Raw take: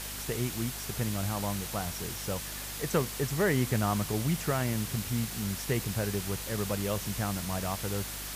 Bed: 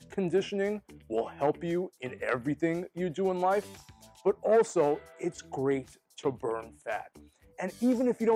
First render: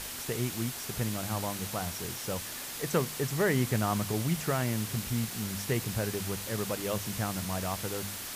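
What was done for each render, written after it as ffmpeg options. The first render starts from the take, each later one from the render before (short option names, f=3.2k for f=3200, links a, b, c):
-af "bandreject=f=50:t=h:w=4,bandreject=f=100:t=h:w=4,bandreject=f=150:t=h:w=4,bandreject=f=200:t=h:w=4"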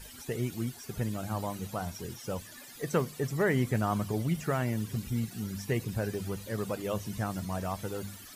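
-af "afftdn=nr=16:nf=-40"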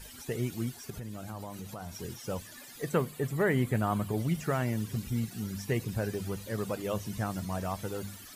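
-filter_complex "[0:a]asettb=1/sr,asplit=3[a][b][c];[a]atrim=end=0.904[d];[b]atrim=start=0.9:end=1.94,asetpts=PTS-STARTPTS,afade=t=in:d=0.004:c=qsin,afade=t=out:st=1.036:d=0.004:c=qsin,acompressor=threshold=-37dB:ratio=5:attack=3.2:release=140:knee=1:detection=peak[e];[c]atrim=start=1.936[f];[d][e]acrossfade=d=0.004:c1=hsin:c2=qsin[g];[g][f]acrossfade=d=0.004:c1=qsin:c2=hsin,asettb=1/sr,asplit=3[h][i][j];[h]atrim=end=2.894[k];[i]atrim=start=2.89:end=4.18,asetpts=PTS-STARTPTS,afade=t=in:d=0.004:c=qsin,afade=t=out:st=1.286:d=0.004:c=qsin,equalizer=f=5.6k:w=2.8:g=-10[l];[j]atrim=start=4.176[m];[k][l]acrossfade=d=0.004:c1=hsin:c2=qsin[n];[n][m]acrossfade=d=0.004:c1=qsin:c2=hsin"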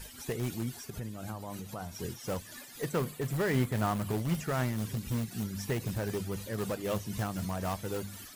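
-filter_complex "[0:a]tremolo=f=3.9:d=0.38,asplit=2[a][b];[b]aeval=exprs='(mod(26.6*val(0)+1,2)-1)/26.6':c=same,volume=-10dB[c];[a][c]amix=inputs=2:normalize=0"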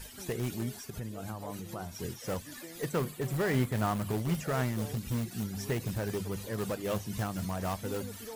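-filter_complex "[1:a]volume=-19.5dB[a];[0:a][a]amix=inputs=2:normalize=0"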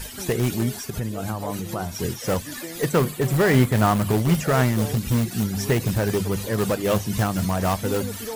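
-af "volume=11.5dB"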